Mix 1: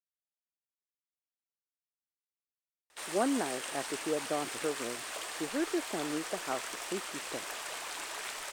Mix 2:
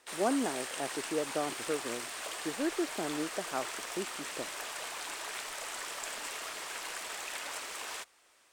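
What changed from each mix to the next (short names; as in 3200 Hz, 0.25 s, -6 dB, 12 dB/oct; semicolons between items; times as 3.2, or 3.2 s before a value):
speech: entry -2.95 s; background: entry -2.90 s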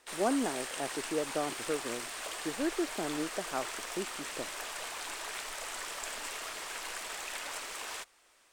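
master: remove HPF 74 Hz 6 dB/oct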